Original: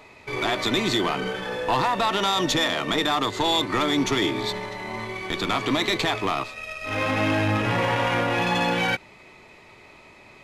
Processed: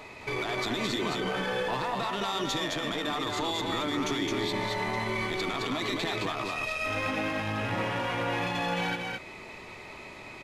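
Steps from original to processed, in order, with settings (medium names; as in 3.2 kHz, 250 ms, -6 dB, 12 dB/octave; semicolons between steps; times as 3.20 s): compression, threshold -27 dBFS, peak gain reduction 8.5 dB; peak limiter -26.5 dBFS, peak gain reduction 11.5 dB; delay 216 ms -3 dB; trim +3 dB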